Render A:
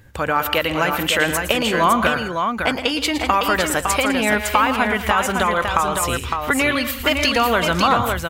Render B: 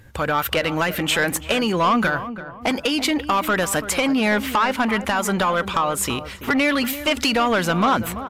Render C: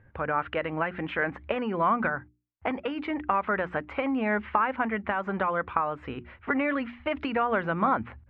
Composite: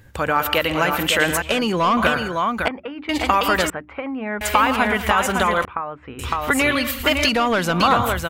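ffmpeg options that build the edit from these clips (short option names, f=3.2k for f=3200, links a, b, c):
-filter_complex "[1:a]asplit=2[a][b];[2:a]asplit=3[c][d][e];[0:a]asplit=6[f][g][h][i][j][k];[f]atrim=end=1.422[l];[a]atrim=start=1.418:end=1.972[m];[g]atrim=start=1.968:end=2.682[n];[c]atrim=start=2.678:end=3.092[o];[h]atrim=start=3.088:end=3.702[p];[d]atrim=start=3.698:end=4.412[q];[i]atrim=start=4.408:end=5.652[r];[e]atrim=start=5.648:end=6.192[s];[j]atrim=start=6.188:end=7.292[t];[b]atrim=start=7.288:end=7.802[u];[k]atrim=start=7.798[v];[l][m]acrossfade=d=0.004:c1=hsin:c2=hsin[w];[w][n]acrossfade=d=0.004:c1=hsin:c2=hsin[x];[x][o]acrossfade=d=0.004:c1=hsin:c2=hsin[y];[y][p]acrossfade=d=0.004:c1=hsin:c2=hsin[z];[z][q]acrossfade=d=0.004:c1=hsin:c2=hsin[aa];[aa][r]acrossfade=d=0.004:c1=hsin:c2=hsin[ab];[ab][s]acrossfade=d=0.004:c1=hsin:c2=hsin[ac];[ac][t]acrossfade=d=0.004:c1=hsin:c2=hsin[ad];[ad][u]acrossfade=d=0.004:c1=hsin:c2=hsin[ae];[ae][v]acrossfade=d=0.004:c1=hsin:c2=hsin"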